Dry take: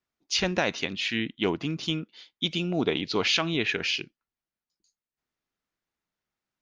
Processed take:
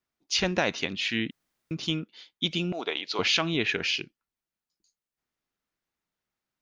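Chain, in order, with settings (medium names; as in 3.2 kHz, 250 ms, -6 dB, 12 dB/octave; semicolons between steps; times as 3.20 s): 1.31–1.71 s: room tone; 2.72–3.19 s: high-pass 610 Hz 12 dB/octave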